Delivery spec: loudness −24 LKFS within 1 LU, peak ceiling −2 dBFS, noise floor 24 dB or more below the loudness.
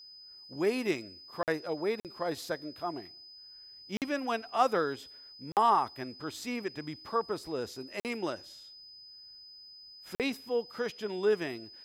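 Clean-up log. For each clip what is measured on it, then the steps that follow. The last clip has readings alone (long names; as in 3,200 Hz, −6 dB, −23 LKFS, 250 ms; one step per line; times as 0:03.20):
number of dropouts 6; longest dropout 48 ms; interfering tone 5,000 Hz; level of the tone −49 dBFS; integrated loudness −33.0 LKFS; sample peak −12.5 dBFS; target loudness −24.0 LKFS
→ repair the gap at 0:01.43/0:02.00/0:03.97/0:05.52/0:08.00/0:10.15, 48 ms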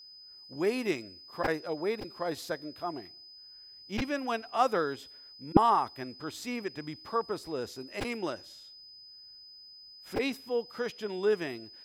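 number of dropouts 0; interfering tone 5,000 Hz; level of the tone −49 dBFS
→ notch filter 5,000 Hz, Q 30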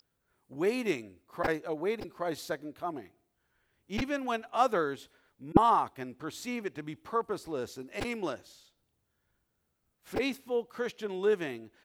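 interfering tone none found; integrated loudness −32.5 LKFS; sample peak −5.5 dBFS; target loudness −24.0 LKFS
→ level +8.5 dB
brickwall limiter −2 dBFS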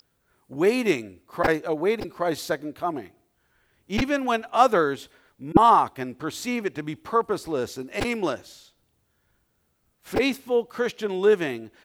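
integrated loudness −24.5 LKFS; sample peak −2.0 dBFS; background noise floor −71 dBFS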